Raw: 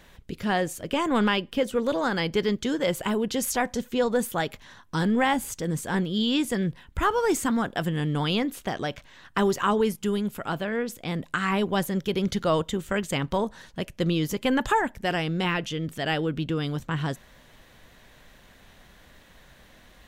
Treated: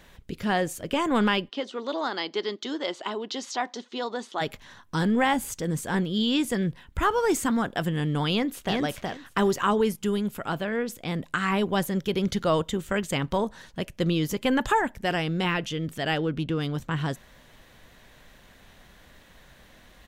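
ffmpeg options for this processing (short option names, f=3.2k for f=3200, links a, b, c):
-filter_complex "[0:a]asplit=3[a][b][c];[a]afade=t=out:st=1.48:d=0.02[d];[b]highpass=f=310:w=0.5412,highpass=f=310:w=1.3066,equalizer=f=500:t=q:w=4:g=-10,equalizer=f=1.6k:t=q:w=4:g=-6,equalizer=f=2.4k:t=q:w=4:g=-6,equalizer=f=4k:t=q:w=4:g=4,lowpass=f=5.7k:w=0.5412,lowpass=f=5.7k:w=1.3066,afade=t=in:st=1.48:d=0.02,afade=t=out:st=4.4:d=0.02[e];[c]afade=t=in:st=4.4:d=0.02[f];[d][e][f]amix=inputs=3:normalize=0,asplit=2[g][h];[h]afade=t=in:st=8.31:d=0.01,afade=t=out:st=8.79:d=0.01,aecho=0:1:370|740|1110:0.749894|0.112484|0.0168726[i];[g][i]amix=inputs=2:normalize=0,asplit=3[j][k][l];[j]afade=t=out:st=16.15:d=0.02[m];[k]adynamicsmooth=sensitivity=7:basefreq=4.5k,afade=t=in:st=16.15:d=0.02,afade=t=out:st=16.73:d=0.02[n];[l]afade=t=in:st=16.73:d=0.02[o];[m][n][o]amix=inputs=3:normalize=0"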